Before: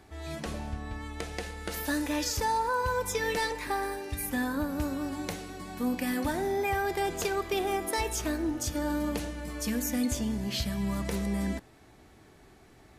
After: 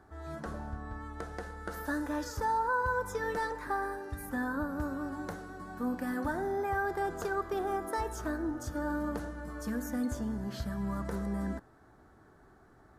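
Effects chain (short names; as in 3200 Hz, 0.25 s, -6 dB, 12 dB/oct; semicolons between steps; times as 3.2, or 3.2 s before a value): resonant high shelf 1900 Hz -8.5 dB, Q 3; gain -4 dB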